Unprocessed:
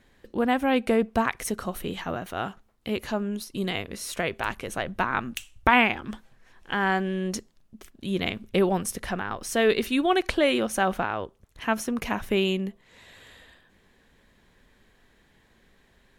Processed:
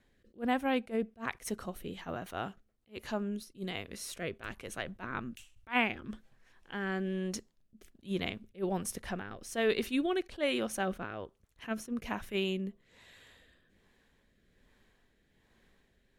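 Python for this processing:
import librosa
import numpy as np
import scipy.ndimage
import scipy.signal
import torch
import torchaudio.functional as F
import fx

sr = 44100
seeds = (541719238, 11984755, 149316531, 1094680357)

y = fx.rotary(x, sr, hz=1.2)
y = fx.attack_slew(y, sr, db_per_s=320.0)
y = y * 10.0 ** (-6.0 / 20.0)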